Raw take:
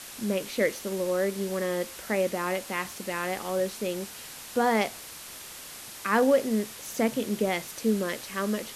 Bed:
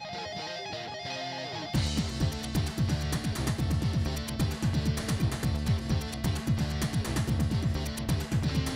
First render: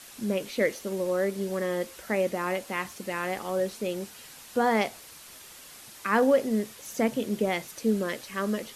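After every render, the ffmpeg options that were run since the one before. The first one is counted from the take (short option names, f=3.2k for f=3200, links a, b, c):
-af "afftdn=nr=6:nf=-43"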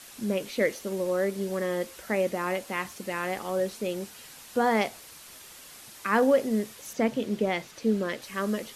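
-filter_complex "[0:a]asettb=1/sr,asplit=3[a][b][c];[a]atrim=end=6.934[d];[b]atrim=start=6.93:end=8.22,asetpts=PTS-STARTPTS,afade=t=in:d=0.004:c=qsin,afade=t=out:st=1.286:d=0.004:c=qsin,acrossover=split=5900[e][f];[f]acompressor=threshold=-56dB:ratio=4:attack=1:release=60[g];[e][g]amix=inputs=2:normalize=0[h];[c]atrim=start=8.216[i];[d][h]acrossfade=d=0.004:c1=hsin:c2=qsin[j];[j][i]acrossfade=d=0.004:c1=qsin:c2=hsin"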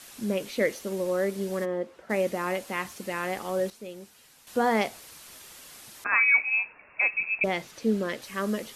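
-filter_complex "[0:a]asplit=3[a][b][c];[a]afade=t=out:st=1.64:d=0.02[d];[b]bandpass=f=400:t=q:w=0.51,afade=t=in:st=1.64:d=0.02,afade=t=out:st=2.09:d=0.02[e];[c]afade=t=in:st=2.09:d=0.02[f];[d][e][f]amix=inputs=3:normalize=0,asettb=1/sr,asplit=3[g][h][i];[g]atrim=end=6.044[j];[h]atrim=start=6.04:end=7.44,asetpts=PTS-STARTPTS,afade=t=in:d=0.004:c=qsin,afade=t=out:st=1.396:d=0.004:c=qsin,lowpass=f=2.4k:t=q:w=0.5098,lowpass=f=2.4k:t=q:w=0.6013,lowpass=f=2.4k:t=q:w=0.9,lowpass=f=2.4k:t=q:w=2.563,afreqshift=-2800[k];[i]atrim=start=7.436[l];[j][k]acrossfade=d=0.004:c1=hsin:c2=qsin[m];[m][l]acrossfade=d=0.004:c1=qsin:c2=hsin,asplit=3[n][o][p];[n]atrim=end=3.702[q];[o]atrim=start=3.698:end=4.472,asetpts=PTS-STARTPTS,volume=-9.5dB[r];[p]atrim=start=4.468[s];[q][r]acrossfade=d=0.004:c1=hsin:c2=hsin[t];[t][s]acrossfade=d=0.004:c1=hsin:c2=hsin"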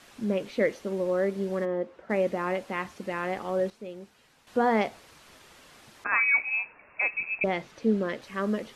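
-af "aemphasis=mode=reproduction:type=75fm"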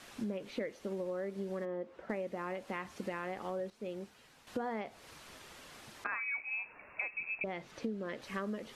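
-filter_complex "[0:a]acrossover=split=3800[a][b];[b]alimiter=level_in=19.5dB:limit=-24dB:level=0:latency=1:release=98,volume=-19.5dB[c];[a][c]amix=inputs=2:normalize=0,acompressor=threshold=-35dB:ratio=10"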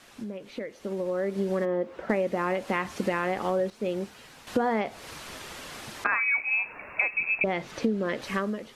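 -af "dynaudnorm=f=690:g=3:m=12dB"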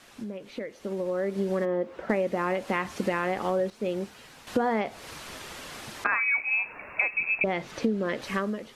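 -af anull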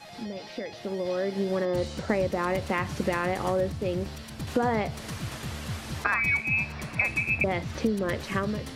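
-filter_complex "[1:a]volume=-7.5dB[a];[0:a][a]amix=inputs=2:normalize=0"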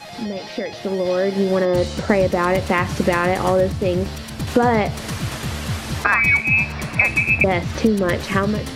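-af "volume=9.5dB,alimiter=limit=-1dB:level=0:latency=1"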